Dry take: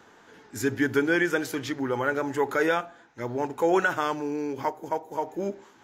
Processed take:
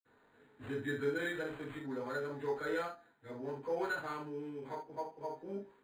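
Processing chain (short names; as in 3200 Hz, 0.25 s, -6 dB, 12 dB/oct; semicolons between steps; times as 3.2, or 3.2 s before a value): reverb, pre-delay 46 ms; decimation joined by straight lines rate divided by 8×; gain +2.5 dB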